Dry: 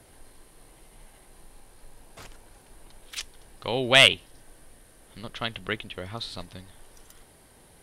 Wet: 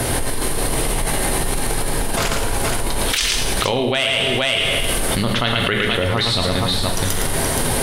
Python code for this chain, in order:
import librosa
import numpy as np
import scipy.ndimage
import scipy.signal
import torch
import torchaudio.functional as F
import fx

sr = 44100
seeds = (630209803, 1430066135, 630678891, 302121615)

y = fx.echo_multitap(x, sr, ms=(112, 473), db=(-6.5, -9.5))
y = fx.rev_plate(y, sr, seeds[0], rt60_s=0.73, hf_ratio=0.95, predelay_ms=0, drr_db=5.0)
y = fx.env_flatten(y, sr, amount_pct=100)
y = F.gain(torch.from_numpy(y), -6.5).numpy()